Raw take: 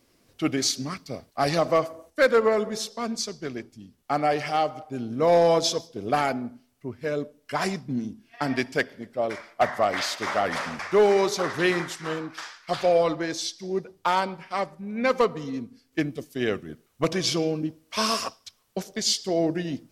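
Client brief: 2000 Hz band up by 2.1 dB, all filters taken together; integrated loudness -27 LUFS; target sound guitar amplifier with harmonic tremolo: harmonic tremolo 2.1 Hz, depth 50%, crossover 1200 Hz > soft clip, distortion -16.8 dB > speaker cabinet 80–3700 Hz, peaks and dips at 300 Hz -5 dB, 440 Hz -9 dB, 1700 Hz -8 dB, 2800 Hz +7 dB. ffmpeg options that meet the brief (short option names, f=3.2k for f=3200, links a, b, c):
-filter_complex "[0:a]equalizer=f=2k:t=o:g=5.5,acrossover=split=1200[a][b];[a]aeval=exprs='val(0)*(1-0.5/2+0.5/2*cos(2*PI*2.1*n/s))':c=same[c];[b]aeval=exprs='val(0)*(1-0.5/2-0.5/2*cos(2*PI*2.1*n/s))':c=same[d];[c][d]amix=inputs=2:normalize=0,asoftclip=threshold=-16dB,highpass=80,equalizer=f=300:t=q:w=4:g=-5,equalizer=f=440:t=q:w=4:g=-9,equalizer=f=1.7k:t=q:w=4:g=-8,equalizer=f=2.8k:t=q:w=4:g=7,lowpass=f=3.7k:w=0.5412,lowpass=f=3.7k:w=1.3066,volume=4.5dB"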